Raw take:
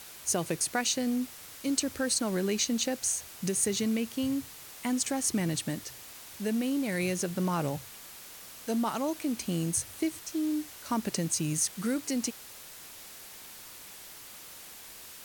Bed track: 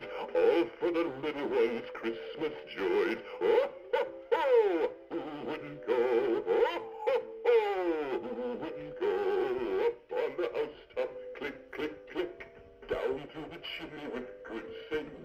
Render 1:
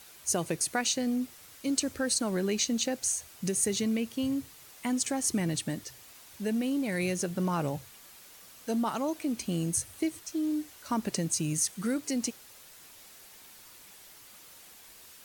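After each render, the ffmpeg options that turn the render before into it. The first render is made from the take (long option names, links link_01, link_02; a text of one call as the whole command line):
ffmpeg -i in.wav -af "afftdn=noise_reduction=6:noise_floor=-48" out.wav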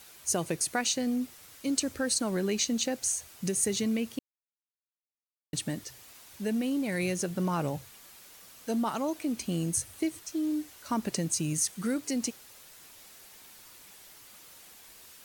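ffmpeg -i in.wav -filter_complex "[0:a]asplit=3[link_01][link_02][link_03];[link_01]atrim=end=4.19,asetpts=PTS-STARTPTS,afade=type=out:start_time=4.186:duration=0.004:curve=hsin[link_04];[link_02]atrim=start=4.19:end=5.53,asetpts=PTS-STARTPTS,volume=0[link_05];[link_03]atrim=start=5.53,asetpts=PTS-STARTPTS,afade=type=in:duration=0.004:curve=hsin[link_06];[link_04][link_05][link_06]concat=n=3:v=0:a=1" out.wav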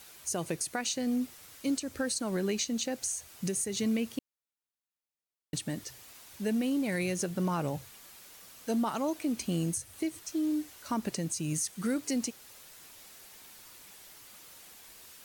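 ffmpeg -i in.wav -af "alimiter=limit=-22dB:level=0:latency=1:release=227" out.wav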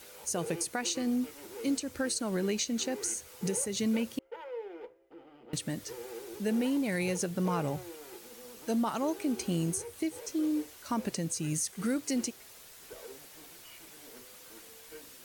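ffmpeg -i in.wav -i bed.wav -filter_complex "[1:a]volume=-15.5dB[link_01];[0:a][link_01]amix=inputs=2:normalize=0" out.wav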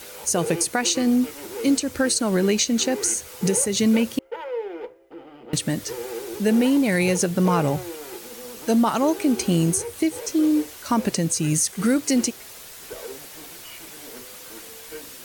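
ffmpeg -i in.wav -af "volume=11dB" out.wav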